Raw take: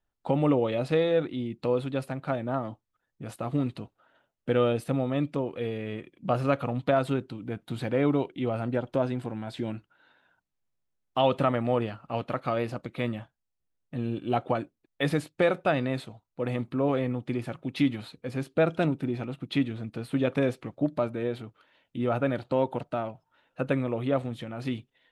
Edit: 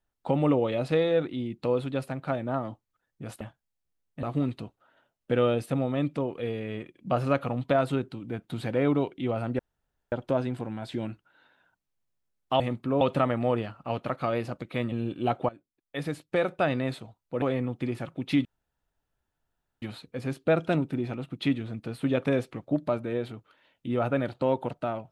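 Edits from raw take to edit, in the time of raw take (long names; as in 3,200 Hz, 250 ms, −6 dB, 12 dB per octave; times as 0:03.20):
0:08.77: splice in room tone 0.53 s
0:13.16–0:13.98: move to 0:03.41
0:14.55–0:15.79: fade in, from −19.5 dB
0:16.48–0:16.89: move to 0:11.25
0:17.92: splice in room tone 1.37 s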